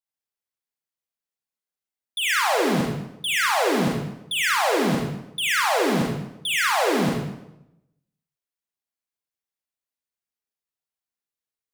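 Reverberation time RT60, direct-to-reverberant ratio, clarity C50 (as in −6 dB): 0.85 s, −2.5 dB, 0.0 dB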